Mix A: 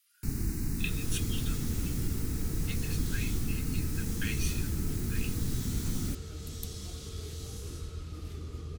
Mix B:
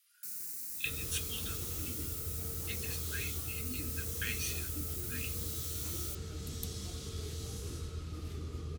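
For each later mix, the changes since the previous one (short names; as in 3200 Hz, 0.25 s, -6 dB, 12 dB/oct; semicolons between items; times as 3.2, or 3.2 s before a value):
first sound: add differentiator; master: add HPF 55 Hz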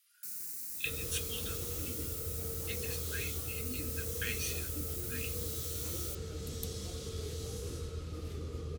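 second sound: add bell 500 Hz +10 dB 0.39 oct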